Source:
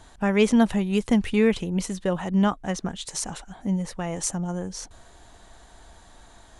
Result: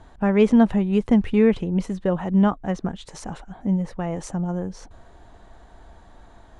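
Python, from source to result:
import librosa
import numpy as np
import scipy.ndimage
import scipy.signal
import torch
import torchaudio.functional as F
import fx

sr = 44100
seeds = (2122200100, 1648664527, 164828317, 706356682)

y = fx.lowpass(x, sr, hz=1100.0, slope=6)
y = F.gain(torch.from_numpy(y), 3.5).numpy()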